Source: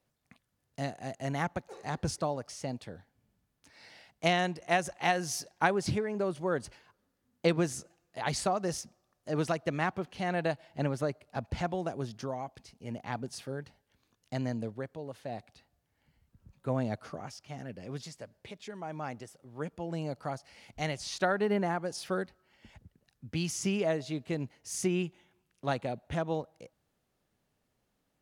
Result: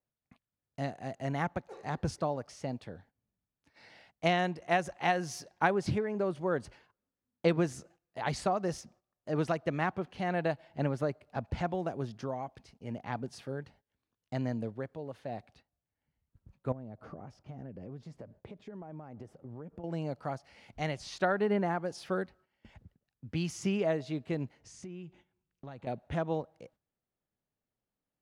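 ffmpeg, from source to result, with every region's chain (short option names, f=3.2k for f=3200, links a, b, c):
-filter_complex "[0:a]asettb=1/sr,asplit=3[a][b][c];[a]atrim=end=16.724[d];[b]atrim=start=16.72:end=19.84,asetpts=PTS-STARTPTS,afade=t=in:d=0.004:c=qsin,afade=t=out:st=3.116:d=0.004:c=qsin,acompressor=threshold=-47dB:ratio=10:attack=3.2:release=140:knee=1:detection=peak,tiltshelf=f=1.3k:g=8.5[e];[c]atrim=start=19.836[f];[d][e]acrossfade=d=0.004:c1=hsin:c2=qsin[g];[g][f]acrossfade=d=0.004:c1=qsin:c2=hsin,asettb=1/sr,asplit=3[h][i][j];[h]atrim=end=24.604[k];[i]atrim=start=24.6:end=25.87,asetpts=PTS-STARTPTS,afade=t=in:d=0.004:c=qsin,afade=t=out:st=1.266:d=0.004:c=qsin,lowpass=f=8.5k:w=0.5412,lowpass=f=8.5k:w=1.3066,lowshelf=f=190:g=8,acompressor=threshold=-43dB:ratio=5:attack=3.2:release=140:knee=1:detection=peak[l];[j]atrim=start=25.866[m];[k][l]acrossfade=d=0.004:c1=hsin:c2=qsin[n];[n][m]acrossfade=d=0.004:c1=qsin:c2=hsin,agate=range=-13dB:threshold=-59dB:ratio=16:detection=peak,highshelf=f=4.7k:g=-11.5"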